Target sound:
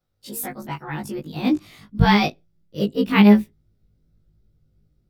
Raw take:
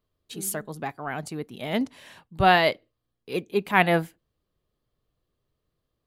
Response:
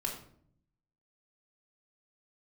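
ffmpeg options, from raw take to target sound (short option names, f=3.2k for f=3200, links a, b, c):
-af "afftfilt=real='re':imag='-im':win_size=2048:overlap=0.75,asubboost=boost=9:cutoff=220,asetrate=52479,aresample=44100,volume=5dB"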